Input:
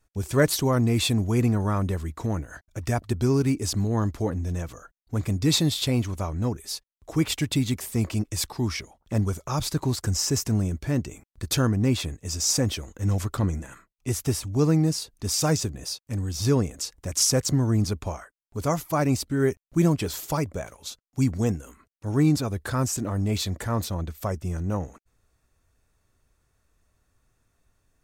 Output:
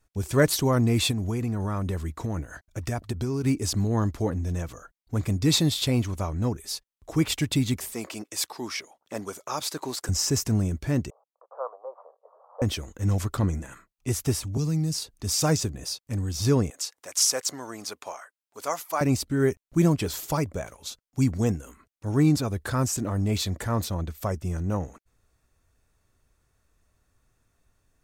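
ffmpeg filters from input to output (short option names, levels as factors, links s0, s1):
-filter_complex "[0:a]asettb=1/sr,asplit=3[s0][s1][s2];[s0]atrim=end=1.114[s3];[s1]atrim=start=1.11:end=3.44,asetpts=PTS-STARTPTS,afade=t=in:d=0.004:c=qsin,afade=t=out:st=2.326:d=0.004:c=qsin,acompressor=threshold=0.0631:ratio=6:attack=3.2:release=140:knee=1:detection=peak[s4];[s2]atrim=start=3.436[s5];[s3][s4]acrossfade=d=0.004:c1=hsin:c2=qsin[s6];[s6][s5]acrossfade=d=0.004:c1=qsin:c2=hsin,asettb=1/sr,asplit=3[s7][s8][s9];[s7]atrim=end=7.934[s10];[s8]atrim=start=7.93:end=10.09,asetpts=PTS-STARTPTS,afade=t=in:d=0.004:c=qsin,afade=t=out:st=2.156:d=0.004:c=qsin,highpass=390[s11];[s9]atrim=start=10.086[s12];[s10][s11]acrossfade=d=0.004:c1=hsin:c2=qsin[s13];[s13][s12]acrossfade=d=0.004:c1=qsin:c2=hsin,asettb=1/sr,asplit=3[s14][s15][s16];[s14]atrim=end=11.104[s17];[s15]atrim=start=11.1:end=12.62,asetpts=PTS-STARTPTS,afade=t=in:d=0.004:c=qsin,afade=t=out:st=1.516:d=0.004:c=qsin,asuperpass=centerf=780:order=12:qfactor=1.1[s18];[s16]atrim=start=12.616[s19];[s17][s18]acrossfade=d=0.004:c1=hsin:c2=qsin[s20];[s20][s19]acrossfade=d=0.004:c1=qsin:c2=hsin,asettb=1/sr,asplit=3[s21][s22][s23];[s21]atrim=end=14.574[s24];[s22]atrim=start=14.57:end=15.35,asetpts=PTS-STARTPTS,afade=t=in:d=0.004:c=qsin,afade=t=out:st=0.776:d=0.004:c=qsin,acrossover=split=170|3000[s25][s26][s27];[s26]acompressor=threshold=0.0224:ratio=6:attack=3.2:release=140:knee=2.83:detection=peak[s28];[s25][s28][s27]amix=inputs=3:normalize=0[s29];[s23]atrim=start=15.346[s30];[s24][s29]acrossfade=d=0.004:c1=hsin:c2=qsin[s31];[s31][s30]acrossfade=d=0.004:c1=qsin:c2=hsin,asettb=1/sr,asplit=3[s32][s33][s34];[s32]atrim=end=16.704[s35];[s33]atrim=start=16.7:end=19.01,asetpts=PTS-STARTPTS,afade=t=in:d=0.004:c=qsin,afade=t=out:st=2.306:d=0.004:c=qsin,highpass=640[s36];[s34]atrim=start=19.006[s37];[s35][s36]acrossfade=d=0.004:c1=hsin:c2=qsin[s38];[s38][s37]acrossfade=d=0.004:c1=qsin:c2=hsin"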